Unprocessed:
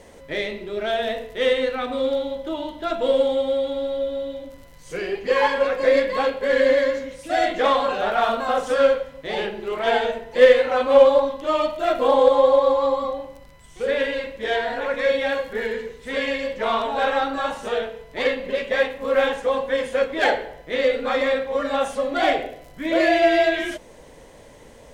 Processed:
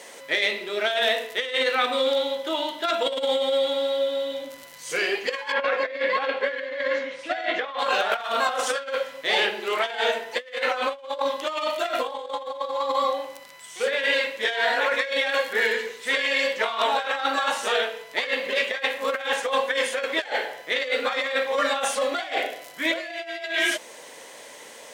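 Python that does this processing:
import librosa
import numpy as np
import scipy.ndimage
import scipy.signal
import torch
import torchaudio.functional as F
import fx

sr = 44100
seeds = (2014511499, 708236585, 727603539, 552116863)

y = fx.low_shelf(x, sr, hz=180.0, db=8.5, at=(4.31, 4.95))
y = fx.lowpass(y, sr, hz=3000.0, slope=12, at=(5.52, 7.79))
y = scipy.signal.sosfilt(scipy.signal.butter(2, 270.0, 'highpass', fs=sr, output='sos'), y)
y = fx.tilt_shelf(y, sr, db=-7.5, hz=800.0)
y = fx.over_compress(y, sr, threshold_db=-24.0, ratio=-0.5)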